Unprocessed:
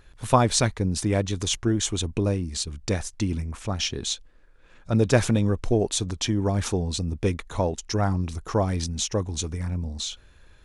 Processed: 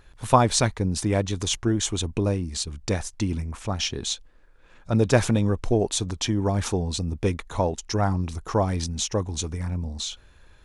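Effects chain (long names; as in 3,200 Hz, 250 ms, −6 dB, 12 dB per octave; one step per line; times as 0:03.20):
parametric band 890 Hz +3 dB 0.77 octaves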